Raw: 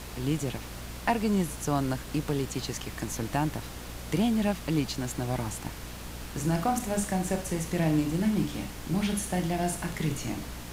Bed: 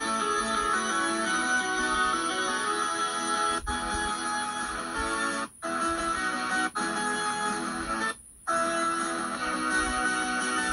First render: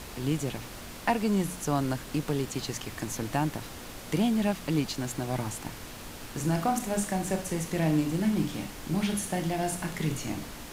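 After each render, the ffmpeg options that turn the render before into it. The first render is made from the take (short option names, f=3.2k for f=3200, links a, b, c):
-af "bandreject=f=60:t=h:w=4,bandreject=f=120:t=h:w=4,bandreject=f=180:t=h:w=4"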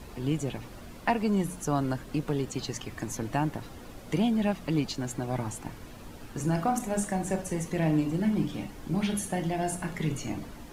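-af "afftdn=nr=10:nf=-43"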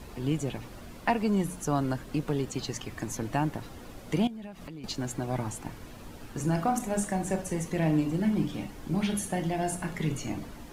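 -filter_complex "[0:a]asettb=1/sr,asplit=3[a][b][c];[a]atrim=end=4.274[d];[b]atrim=start=4.27:end=4.84,asetpts=PTS-STARTPTS,afade=t=in:d=0.004:c=qsin,afade=t=out:st=0.566:d=0.004:c=qsin,acompressor=threshold=-38dB:ratio=12:attack=3.2:release=140:knee=1:detection=peak[e];[c]atrim=start=4.836[f];[d][e]acrossfade=d=0.004:c1=hsin:c2=qsin[g];[g][f]acrossfade=d=0.004:c1=qsin:c2=hsin"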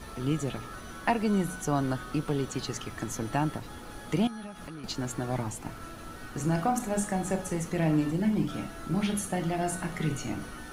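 -filter_complex "[1:a]volume=-18.5dB[a];[0:a][a]amix=inputs=2:normalize=0"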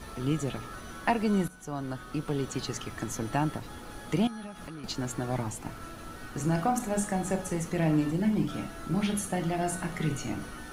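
-filter_complex "[0:a]asplit=2[a][b];[a]atrim=end=1.48,asetpts=PTS-STARTPTS,afade=t=out:st=1.476:d=0.004:c=hsin:silence=0.188365[c];[b]atrim=start=1.48,asetpts=PTS-STARTPTS,afade=t=in:d=1.05:silence=0.188365[d];[c][d]concat=n=2:v=0:a=1"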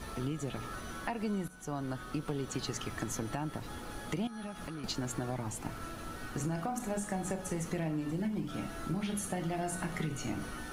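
-af "alimiter=limit=-20dB:level=0:latency=1:release=338,acompressor=threshold=-32dB:ratio=4"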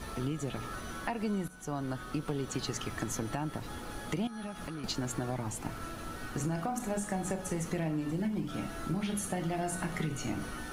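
-af "volume=1.5dB"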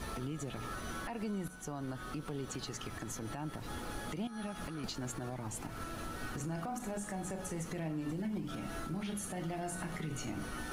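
-af "alimiter=level_in=6.5dB:limit=-24dB:level=0:latency=1:release=144,volume=-6.5dB,areverse,acompressor=mode=upward:threshold=-41dB:ratio=2.5,areverse"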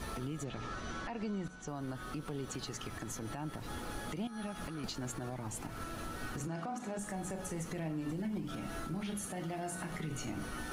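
-filter_complex "[0:a]asettb=1/sr,asplit=3[a][b][c];[a]atrim=end=0.444[d];[b]atrim=start=0.44:end=1.68,asetpts=PTS-STARTPTS,afade=t=in:d=0.004:c=qsin,afade=t=out:st=1.236:d=0.004:c=qsin,lowpass=f=7k:w=0.5412,lowpass=f=7k:w=1.3066[e];[c]atrim=start=1.676[f];[d][e]acrossfade=d=0.004:c1=hsin:c2=qsin[g];[g][f]acrossfade=d=0.004:c1=qsin:c2=hsin,asettb=1/sr,asplit=3[h][i][j];[h]atrim=end=6.474[k];[i]atrim=start=6.47:end=6.99,asetpts=PTS-STARTPTS,afade=t=in:d=0.004:c=qsin,afade=t=out:st=0.516:d=0.004:c=qsin,highpass=140,lowpass=6.9k[l];[j]atrim=start=6.986[m];[k][l]acrossfade=d=0.004:c1=hsin:c2=qsin[n];[n][m]acrossfade=d=0.004:c1=qsin:c2=hsin,asettb=1/sr,asplit=3[o][p][q];[o]atrim=end=9.264[r];[p]atrim=start=9.26:end=9.91,asetpts=PTS-STARTPTS,afade=t=in:d=0.004:c=qsin,afade=t=out:st=0.646:d=0.004:c=qsin,highpass=f=100:p=1[s];[q]atrim=start=9.906[t];[r][s]acrossfade=d=0.004:c1=hsin:c2=qsin[u];[u][t]acrossfade=d=0.004:c1=qsin:c2=hsin"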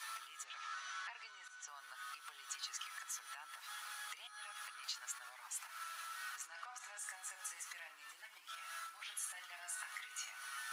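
-af "highpass=f=1.2k:w=0.5412,highpass=f=1.2k:w=1.3066"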